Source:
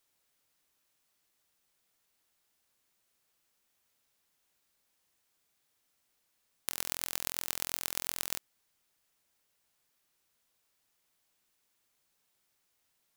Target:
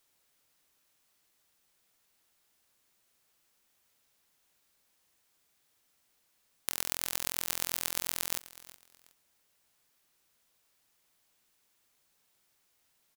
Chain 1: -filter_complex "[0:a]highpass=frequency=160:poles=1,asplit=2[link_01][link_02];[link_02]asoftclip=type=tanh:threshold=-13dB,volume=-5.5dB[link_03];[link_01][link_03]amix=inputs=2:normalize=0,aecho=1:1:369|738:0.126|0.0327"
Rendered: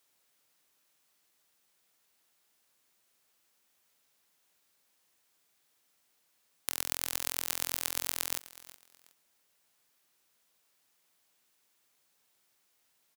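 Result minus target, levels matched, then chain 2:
125 Hz band −4.0 dB
-filter_complex "[0:a]asplit=2[link_01][link_02];[link_02]asoftclip=type=tanh:threshold=-13dB,volume=-5.5dB[link_03];[link_01][link_03]amix=inputs=2:normalize=0,aecho=1:1:369|738:0.126|0.0327"

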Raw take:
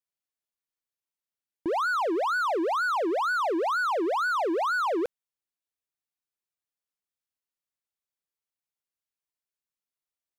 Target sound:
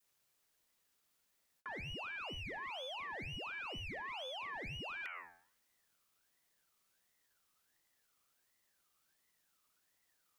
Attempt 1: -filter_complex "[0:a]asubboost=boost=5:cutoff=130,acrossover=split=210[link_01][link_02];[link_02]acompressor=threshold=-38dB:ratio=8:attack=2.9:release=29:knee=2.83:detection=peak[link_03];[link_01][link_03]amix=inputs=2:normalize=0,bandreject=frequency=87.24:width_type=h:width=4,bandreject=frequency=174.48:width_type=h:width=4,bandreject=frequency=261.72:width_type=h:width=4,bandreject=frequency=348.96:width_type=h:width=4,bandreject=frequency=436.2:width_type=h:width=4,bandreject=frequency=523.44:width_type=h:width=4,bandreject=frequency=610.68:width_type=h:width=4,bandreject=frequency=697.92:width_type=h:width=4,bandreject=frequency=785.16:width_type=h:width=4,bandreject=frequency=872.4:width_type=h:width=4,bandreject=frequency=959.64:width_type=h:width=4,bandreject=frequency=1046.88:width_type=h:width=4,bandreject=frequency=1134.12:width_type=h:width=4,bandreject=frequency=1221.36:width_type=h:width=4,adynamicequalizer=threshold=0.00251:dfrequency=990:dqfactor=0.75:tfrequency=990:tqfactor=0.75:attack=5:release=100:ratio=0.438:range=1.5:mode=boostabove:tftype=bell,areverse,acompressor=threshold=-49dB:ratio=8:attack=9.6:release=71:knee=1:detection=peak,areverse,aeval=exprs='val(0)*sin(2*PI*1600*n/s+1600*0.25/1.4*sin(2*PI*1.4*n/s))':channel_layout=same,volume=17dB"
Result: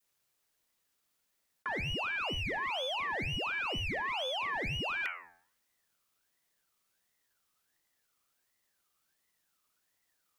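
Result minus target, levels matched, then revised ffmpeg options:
downward compressor: peak gain reduction −9.5 dB
-filter_complex "[0:a]asubboost=boost=5:cutoff=130,acrossover=split=210[link_01][link_02];[link_02]acompressor=threshold=-38dB:ratio=8:attack=2.9:release=29:knee=2.83:detection=peak[link_03];[link_01][link_03]amix=inputs=2:normalize=0,bandreject=frequency=87.24:width_type=h:width=4,bandreject=frequency=174.48:width_type=h:width=4,bandreject=frequency=261.72:width_type=h:width=4,bandreject=frequency=348.96:width_type=h:width=4,bandreject=frequency=436.2:width_type=h:width=4,bandreject=frequency=523.44:width_type=h:width=4,bandreject=frequency=610.68:width_type=h:width=4,bandreject=frequency=697.92:width_type=h:width=4,bandreject=frequency=785.16:width_type=h:width=4,bandreject=frequency=872.4:width_type=h:width=4,bandreject=frequency=959.64:width_type=h:width=4,bandreject=frequency=1046.88:width_type=h:width=4,bandreject=frequency=1134.12:width_type=h:width=4,bandreject=frequency=1221.36:width_type=h:width=4,adynamicequalizer=threshold=0.00251:dfrequency=990:dqfactor=0.75:tfrequency=990:tqfactor=0.75:attack=5:release=100:ratio=0.438:range=1.5:mode=boostabove:tftype=bell,areverse,acompressor=threshold=-60dB:ratio=8:attack=9.6:release=71:knee=1:detection=peak,areverse,aeval=exprs='val(0)*sin(2*PI*1600*n/s+1600*0.25/1.4*sin(2*PI*1.4*n/s))':channel_layout=same,volume=17dB"

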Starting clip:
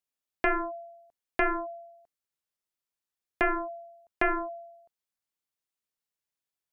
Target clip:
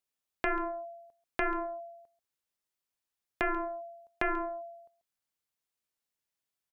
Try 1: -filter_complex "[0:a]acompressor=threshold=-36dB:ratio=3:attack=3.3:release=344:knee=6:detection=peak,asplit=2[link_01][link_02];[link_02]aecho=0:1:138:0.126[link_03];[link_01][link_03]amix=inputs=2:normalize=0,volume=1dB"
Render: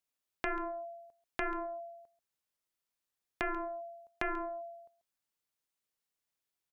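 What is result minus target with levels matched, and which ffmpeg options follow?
downward compressor: peak gain reduction +4.5 dB
-filter_complex "[0:a]acompressor=threshold=-29dB:ratio=3:attack=3.3:release=344:knee=6:detection=peak,asplit=2[link_01][link_02];[link_02]aecho=0:1:138:0.126[link_03];[link_01][link_03]amix=inputs=2:normalize=0,volume=1dB"

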